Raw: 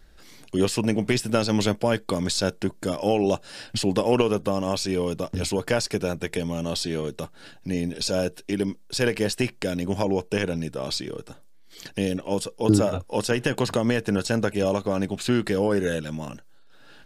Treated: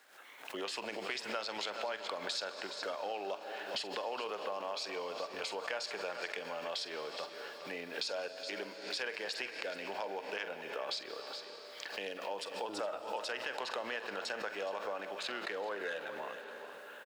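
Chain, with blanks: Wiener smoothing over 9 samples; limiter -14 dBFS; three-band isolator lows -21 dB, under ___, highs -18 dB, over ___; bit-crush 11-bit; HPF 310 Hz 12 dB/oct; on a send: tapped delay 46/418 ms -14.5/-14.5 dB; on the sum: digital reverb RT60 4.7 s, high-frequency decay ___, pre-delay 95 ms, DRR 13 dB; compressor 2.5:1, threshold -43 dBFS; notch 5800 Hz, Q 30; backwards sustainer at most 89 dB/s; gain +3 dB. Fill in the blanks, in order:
590 Hz, 5600 Hz, 0.95×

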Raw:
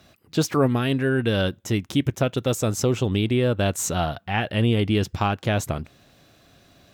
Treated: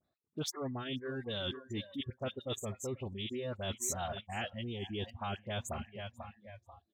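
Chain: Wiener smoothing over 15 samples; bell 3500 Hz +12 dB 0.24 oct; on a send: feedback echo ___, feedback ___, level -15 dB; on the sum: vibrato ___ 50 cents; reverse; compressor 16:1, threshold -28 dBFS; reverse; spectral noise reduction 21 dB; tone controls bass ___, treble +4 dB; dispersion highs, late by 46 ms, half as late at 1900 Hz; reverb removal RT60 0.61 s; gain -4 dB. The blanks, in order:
0.489 s, 47%, 1.8 Hz, -3 dB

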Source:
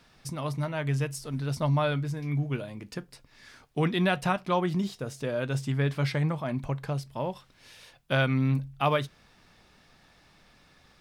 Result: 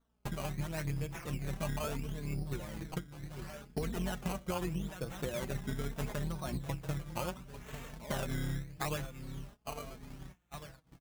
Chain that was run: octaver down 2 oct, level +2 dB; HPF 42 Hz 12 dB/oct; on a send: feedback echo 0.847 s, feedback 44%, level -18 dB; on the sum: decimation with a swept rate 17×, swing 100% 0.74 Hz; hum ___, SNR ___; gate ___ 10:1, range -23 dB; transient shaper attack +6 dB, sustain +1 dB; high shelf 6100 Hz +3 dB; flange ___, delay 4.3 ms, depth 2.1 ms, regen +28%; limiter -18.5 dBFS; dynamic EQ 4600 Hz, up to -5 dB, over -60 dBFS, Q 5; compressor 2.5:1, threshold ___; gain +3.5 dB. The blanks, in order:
60 Hz, 26 dB, -47 dBFS, 0.51 Hz, -42 dBFS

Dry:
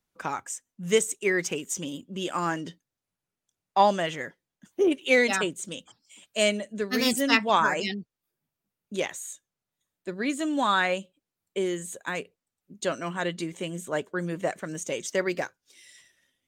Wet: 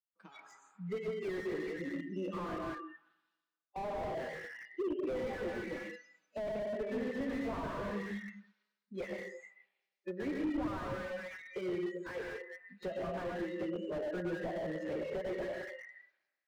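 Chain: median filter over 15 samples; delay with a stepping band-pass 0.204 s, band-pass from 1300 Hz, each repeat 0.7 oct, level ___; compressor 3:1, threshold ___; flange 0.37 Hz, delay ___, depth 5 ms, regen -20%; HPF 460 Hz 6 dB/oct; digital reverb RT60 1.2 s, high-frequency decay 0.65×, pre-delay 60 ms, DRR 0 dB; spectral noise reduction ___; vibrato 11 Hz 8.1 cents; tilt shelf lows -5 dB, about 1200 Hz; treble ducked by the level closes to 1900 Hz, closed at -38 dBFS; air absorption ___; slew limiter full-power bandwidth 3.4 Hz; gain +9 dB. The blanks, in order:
-12 dB, -32 dBFS, 8.6 ms, 25 dB, 270 m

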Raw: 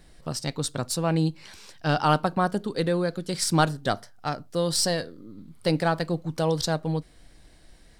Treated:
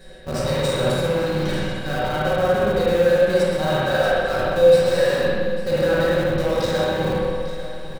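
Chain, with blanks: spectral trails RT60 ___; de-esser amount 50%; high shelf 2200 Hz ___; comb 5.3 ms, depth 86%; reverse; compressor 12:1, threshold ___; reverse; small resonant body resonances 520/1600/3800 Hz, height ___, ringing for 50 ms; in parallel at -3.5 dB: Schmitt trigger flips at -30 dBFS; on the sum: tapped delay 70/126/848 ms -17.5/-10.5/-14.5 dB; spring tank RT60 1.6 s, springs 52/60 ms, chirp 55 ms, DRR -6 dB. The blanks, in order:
0.64 s, +2 dB, -32 dBFS, 17 dB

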